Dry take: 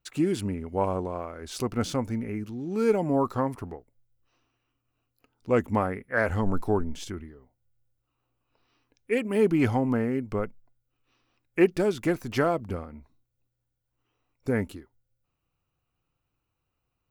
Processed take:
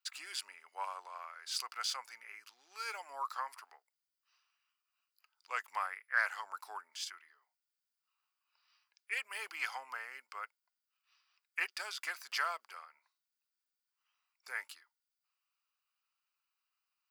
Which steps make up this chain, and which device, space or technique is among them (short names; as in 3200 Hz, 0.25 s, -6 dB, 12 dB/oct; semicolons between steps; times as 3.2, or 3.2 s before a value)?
headphones lying on a table (HPF 1100 Hz 24 dB/oct; bell 4800 Hz +10.5 dB 0.2 oct); gain -2.5 dB